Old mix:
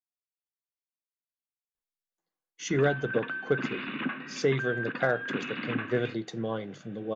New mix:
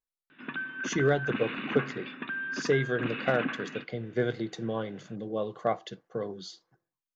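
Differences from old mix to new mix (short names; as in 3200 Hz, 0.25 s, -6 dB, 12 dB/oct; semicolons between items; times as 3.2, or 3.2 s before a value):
speech: entry -1.75 s; background: entry -2.30 s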